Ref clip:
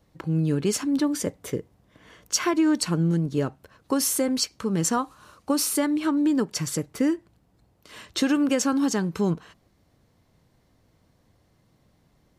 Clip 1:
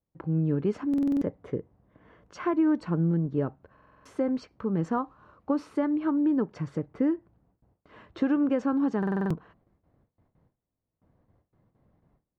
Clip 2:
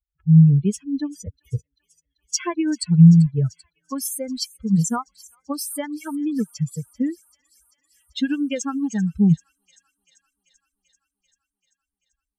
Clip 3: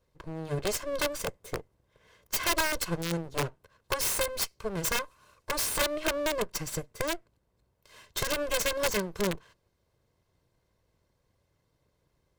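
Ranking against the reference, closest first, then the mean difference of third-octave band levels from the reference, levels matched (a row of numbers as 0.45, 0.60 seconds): 1, 3, 2; 6.5, 8.5, 14.0 decibels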